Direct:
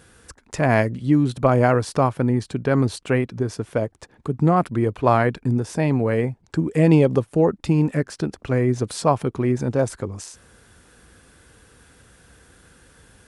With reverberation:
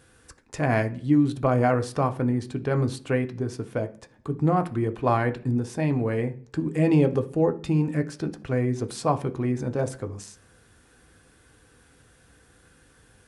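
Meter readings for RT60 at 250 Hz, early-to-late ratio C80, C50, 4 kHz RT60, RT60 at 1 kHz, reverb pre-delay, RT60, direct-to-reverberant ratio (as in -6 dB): 0.70 s, 21.5 dB, 16.5 dB, 0.55 s, 0.40 s, 3 ms, 0.45 s, 6.5 dB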